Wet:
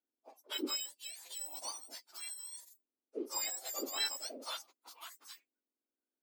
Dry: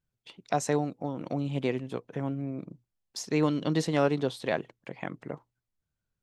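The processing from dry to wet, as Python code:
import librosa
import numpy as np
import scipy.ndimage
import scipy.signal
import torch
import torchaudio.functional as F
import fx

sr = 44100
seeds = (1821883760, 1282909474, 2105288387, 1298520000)

y = fx.octave_mirror(x, sr, pivot_hz=1500.0)
y = scipy.signal.sosfilt(scipy.signal.butter(12, 240.0, 'highpass', fs=sr, output='sos'), y)
y = F.gain(torch.from_numpy(y), -7.5).numpy()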